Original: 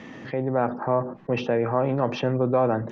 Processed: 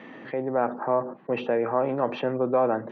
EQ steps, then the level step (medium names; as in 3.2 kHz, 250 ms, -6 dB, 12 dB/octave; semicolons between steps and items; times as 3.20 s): Bessel high-pass 300 Hz, order 2; Butterworth band-stop 5.2 kHz, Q 7.7; distance through air 260 m; +1.0 dB